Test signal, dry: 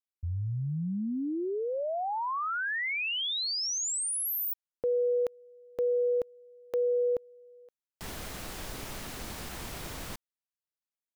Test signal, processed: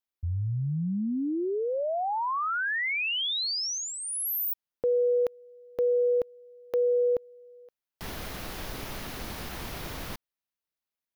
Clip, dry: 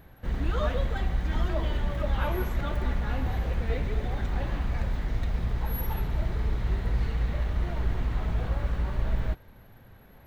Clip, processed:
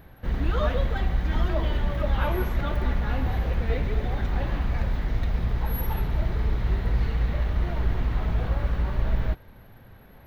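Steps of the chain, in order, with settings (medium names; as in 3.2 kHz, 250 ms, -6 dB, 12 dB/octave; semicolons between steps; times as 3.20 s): peaking EQ 7.9 kHz -8.5 dB 0.58 oct; trim +3 dB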